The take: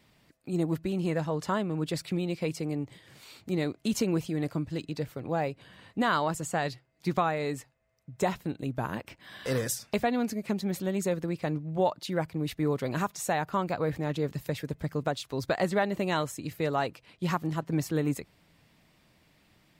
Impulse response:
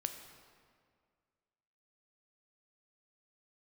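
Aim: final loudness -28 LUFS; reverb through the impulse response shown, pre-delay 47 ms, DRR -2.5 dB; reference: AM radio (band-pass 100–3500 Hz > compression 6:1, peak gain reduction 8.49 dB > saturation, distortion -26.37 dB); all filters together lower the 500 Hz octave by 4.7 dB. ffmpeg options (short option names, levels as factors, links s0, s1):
-filter_complex "[0:a]equalizer=f=500:t=o:g=-6,asplit=2[s0][s1];[1:a]atrim=start_sample=2205,adelay=47[s2];[s1][s2]afir=irnorm=-1:irlink=0,volume=1.33[s3];[s0][s3]amix=inputs=2:normalize=0,highpass=100,lowpass=3500,acompressor=threshold=0.0398:ratio=6,asoftclip=threshold=0.1,volume=2"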